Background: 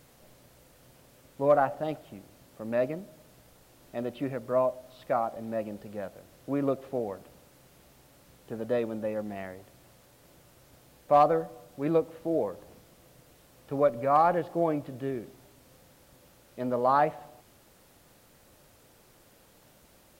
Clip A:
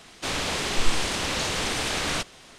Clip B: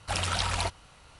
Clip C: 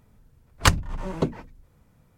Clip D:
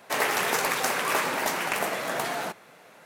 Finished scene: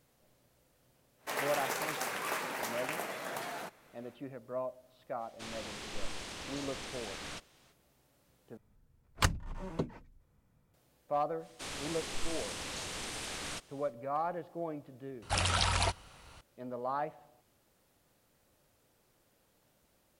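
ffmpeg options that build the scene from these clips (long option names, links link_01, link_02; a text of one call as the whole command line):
ffmpeg -i bed.wav -i cue0.wav -i cue1.wav -i cue2.wav -i cue3.wav -filter_complex "[1:a]asplit=2[link_01][link_02];[0:a]volume=-12dB[link_03];[link_02]equalizer=frequency=9800:width=1:gain=6[link_04];[link_03]asplit=2[link_05][link_06];[link_05]atrim=end=8.574[link_07];[3:a]atrim=end=2.17,asetpts=PTS-STARTPTS,volume=-10.5dB[link_08];[link_06]atrim=start=10.736[link_09];[4:a]atrim=end=3.05,asetpts=PTS-STARTPTS,volume=-10.5dB,afade=type=in:duration=0.1,afade=type=out:start_time=2.95:duration=0.1,adelay=1170[link_10];[link_01]atrim=end=2.58,asetpts=PTS-STARTPTS,volume=-16.5dB,afade=type=in:duration=0.05,afade=type=out:start_time=2.53:duration=0.05,adelay=227997S[link_11];[link_04]atrim=end=2.58,asetpts=PTS-STARTPTS,volume=-14.5dB,afade=type=in:duration=0.1,afade=type=out:start_time=2.48:duration=0.1,adelay=11370[link_12];[2:a]atrim=end=1.19,asetpts=PTS-STARTPTS,volume=-1dB,afade=type=in:duration=0.004:curve=hsin,afade=type=out:start_time=1.186:duration=0.004:curve=hsin,adelay=15220[link_13];[link_07][link_08]acrossfade=duration=0.004:curve1=hsin:curve2=hsin[link_14];[link_14][link_09]acrossfade=duration=0.004:curve1=hsin:curve2=hsin[link_15];[link_15][link_10][link_11][link_12][link_13]amix=inputs=5:normalize=0" out.wav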